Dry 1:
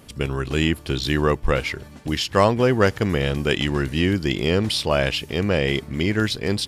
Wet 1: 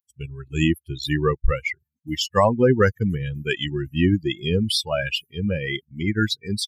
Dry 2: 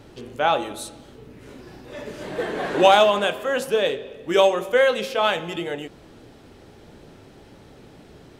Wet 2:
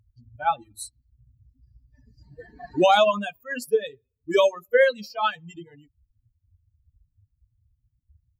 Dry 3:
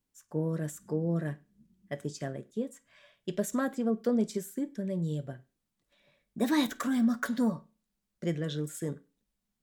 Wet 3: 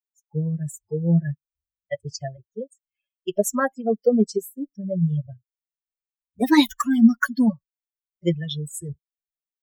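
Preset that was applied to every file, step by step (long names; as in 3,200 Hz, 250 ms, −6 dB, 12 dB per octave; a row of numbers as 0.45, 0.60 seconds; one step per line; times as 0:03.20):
spectral dynamics exaggerated over time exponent 3
boost into a limiter +11 dB
loudness normalisation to −23 LKFS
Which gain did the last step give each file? −5.0, −7.5, +4.0 decibels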